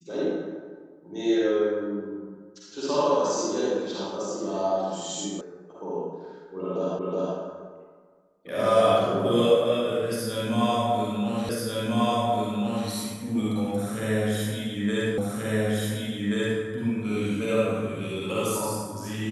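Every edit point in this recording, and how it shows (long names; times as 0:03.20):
0:05.41: cut off before it has died away
0:06.99: the same again, the last 0.37 s
0:11.49: the same again, the last 1.39 s
0:15.18: the same again, the last 1.43 s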